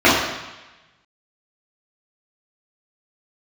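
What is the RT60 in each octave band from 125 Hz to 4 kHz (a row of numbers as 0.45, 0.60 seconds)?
1.3, 0.95, 1.0, 1.1, 1.2, 1.1 seconds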